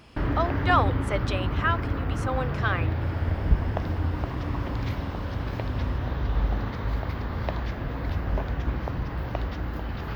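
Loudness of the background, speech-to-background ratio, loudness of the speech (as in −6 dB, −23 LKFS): −29.5 LKFS, 0.5 dB, −29.0 LKFS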